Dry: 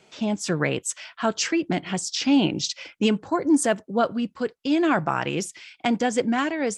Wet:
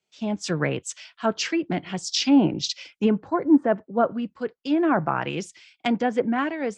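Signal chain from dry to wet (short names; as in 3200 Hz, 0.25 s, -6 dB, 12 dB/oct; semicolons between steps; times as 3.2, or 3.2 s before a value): treble ducked by the level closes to 1400 Hz, closed at -16.5 dBFS; three-band expander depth 70%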